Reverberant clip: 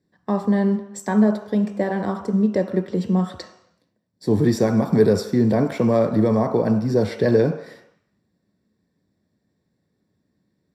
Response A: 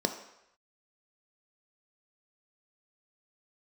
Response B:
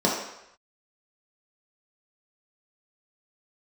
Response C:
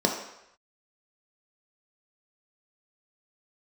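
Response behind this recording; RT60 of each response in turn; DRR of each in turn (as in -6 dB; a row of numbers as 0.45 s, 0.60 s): A; 0.85 s, 0.85 s, 0.85 s; 5.5 dB, -4.5 dB, 0.5 dB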